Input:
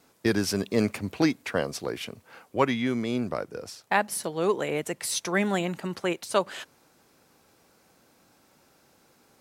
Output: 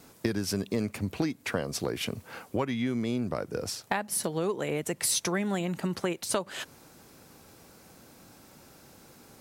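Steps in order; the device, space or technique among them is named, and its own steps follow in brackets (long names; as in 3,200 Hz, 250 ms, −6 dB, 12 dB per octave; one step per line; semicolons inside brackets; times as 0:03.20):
ASMR close-microphone chain (low-shelf EQ 250 Hz +8 dB; downward compressor 6 to 1, threshold −32 dBFS, peak gain reduction 16.5 dB; high-shelf EQ 6,200 Hz +5 dB)
level +5 dB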